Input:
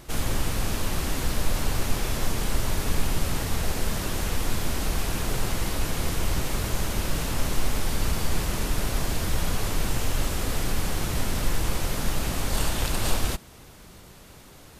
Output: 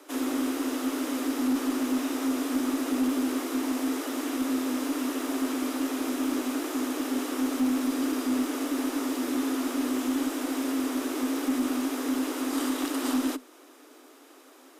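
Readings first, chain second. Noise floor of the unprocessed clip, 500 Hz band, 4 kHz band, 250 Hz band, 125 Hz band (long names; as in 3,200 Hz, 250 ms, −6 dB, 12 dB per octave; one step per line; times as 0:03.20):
−48 dBFS, 0.0 dB, −5.5 dB, +9.0 dB, below −25 dB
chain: parametric band 980 Hz +5.5 dB 0.42 octaves
notch filter 4,100 Hz, Q 15
frequency shifter +250 Hz
harmonic generator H 2 −26 dB, 5 −20 dB, 6 −43 dB, 7 −27 dB, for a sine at −9.5 dBFS
level −7 dB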